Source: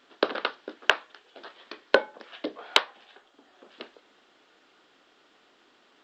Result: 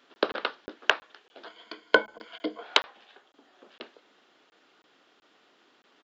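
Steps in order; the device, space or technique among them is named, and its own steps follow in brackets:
call with lost packets (high-pass filter 100 Hz 24 dB per octave; downsampling to 16,000 Hz; dropped packets of 20 ms random)
0:01.46–0:02.63: EQ curve with evenly spaced ripples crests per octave 1.8, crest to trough 12 dB
level −1.5 dB

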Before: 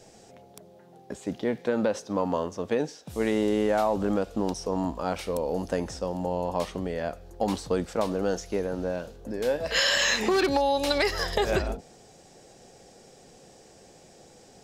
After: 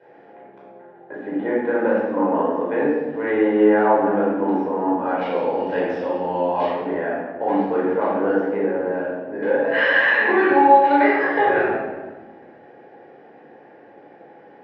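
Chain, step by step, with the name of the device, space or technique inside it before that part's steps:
0:05.21–0:06.66: flat-topped bell 5,900 Hz +14 dB 2.6 octaves
high-pass filter 190 Hz 24 dB per octave
bass cabinet (loudspeaker in its box 62–2,300 Hz, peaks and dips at 68 Hz +10 dB, 98 Hz +10 dB, 180 Hz −9 dB, 280 Hz +5 dB, 830 Hz +7 dB, 1,700 Hz +9 dB)
high-shelf EQ 12,000 Hz −5.5 dB
rectangular room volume 860 cubic metres, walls mixed, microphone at 4.8 metres
level −4.5 dB

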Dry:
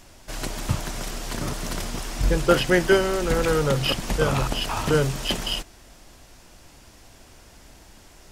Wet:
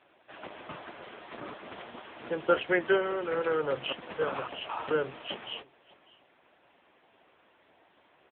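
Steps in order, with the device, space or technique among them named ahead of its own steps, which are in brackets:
satellite phone (band-pass filter 360–3,300 Hz; single-tap delay 599 ms −22.5 dB; level −4.5 dB; AMR narrowband 6.7 kbit/s 8,000 Hz)

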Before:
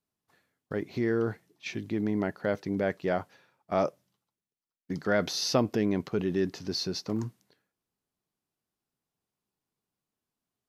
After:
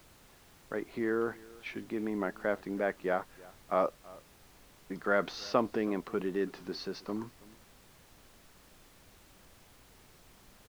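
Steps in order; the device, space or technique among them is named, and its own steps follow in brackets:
horn gramophone (band-pass filter 240–3,000 Hz; parametric band 1,200 Hz +6 dB 0.77 octaves; tape wow and flutter; pink noise bed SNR 22 dB)
slap from a distant wall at 56 metres, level −22 dB
level −3 dB

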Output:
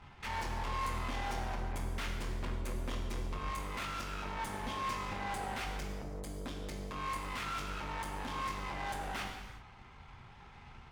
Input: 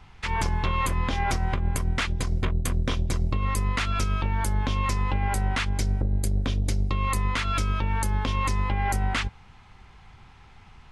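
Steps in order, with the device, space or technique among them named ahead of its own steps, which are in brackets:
0:04.36–0:05.53: mains-hum notches 50/100/150/200 Hz
tube preamp driven hard (tube saturation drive 37 dB, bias 0.65; low-shelf EQ 120 Hz −4.5 dB; high-shelf EQ 3,700 Hz −7 dB)
reverb whose tail is shaped and stops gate 410 ms falling, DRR 0 dB

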